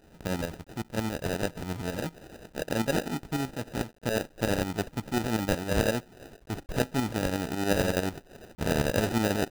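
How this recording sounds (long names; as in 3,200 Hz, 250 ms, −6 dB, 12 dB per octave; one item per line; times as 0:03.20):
aliases and images of a low sample rate 1,100 Hz, jitter 0%
tremolo saw up 11 Hz, depth 65%
a quantiser's noise floor 10 bits, dither none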